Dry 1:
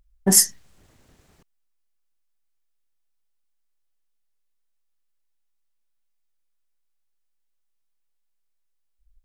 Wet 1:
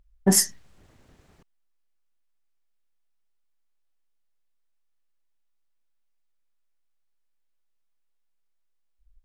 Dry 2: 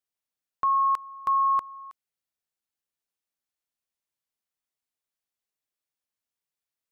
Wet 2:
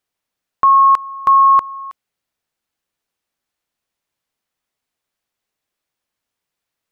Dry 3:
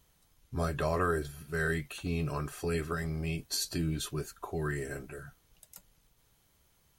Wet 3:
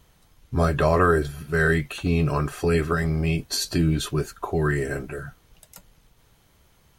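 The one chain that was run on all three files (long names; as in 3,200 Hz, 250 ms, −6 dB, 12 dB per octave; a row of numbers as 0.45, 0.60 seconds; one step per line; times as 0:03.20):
high-shelf EQ 4,800 Hz −8 dB
normalise the peak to −6 dBFS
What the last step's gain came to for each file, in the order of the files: +1.0, +13.5, +11.0 decibels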